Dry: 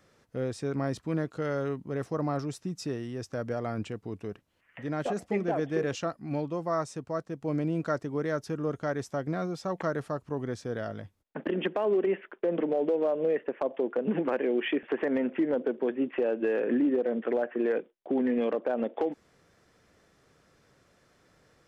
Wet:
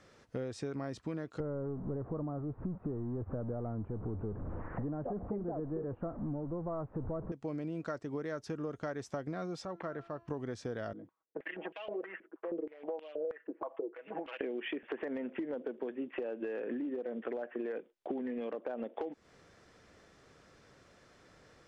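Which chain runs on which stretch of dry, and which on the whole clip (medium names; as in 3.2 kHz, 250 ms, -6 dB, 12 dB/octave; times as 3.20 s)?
1.40–7.32 s: jump at every zero crossing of -34.5 dBFS + inverse Chebyshev low-pass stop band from 5.4 kHz, stop band 70 dB + tilt EQ -3 dB/octave
9.65–10.28 s: low-pass 3.1 kHz + feedback comb 340 Hz, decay 0.76 s, mix 70%
10.93–14.41 s: comb 6.2 ms, depth 94% + step-sequenced band-pass 6.3 Hz 290–2900 Hz
whole clip: low-pass 7.9 kHz; peaking EQ 150 Hz -2.5 dB; compression 10:1, threshold -38 dBFS; trim +3 dB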